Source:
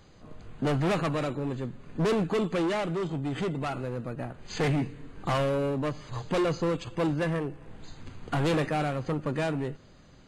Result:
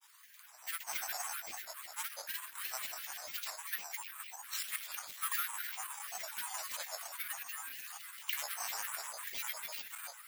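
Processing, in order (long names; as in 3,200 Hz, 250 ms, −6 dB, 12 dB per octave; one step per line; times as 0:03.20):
feedback delay that plays each chunk backwards 141 ms, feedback 71%, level −6.5 dB
downward compressor, threshold −30 dBFS, peak gain reduction 8 dB
Chebyshev high-pass filter 1,100 Hz, order 5
bad sample-rate conversion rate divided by 4×, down filtered, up zero stuff
granular cloud, grains 20 per second, pitch spread up and down by 12 semitones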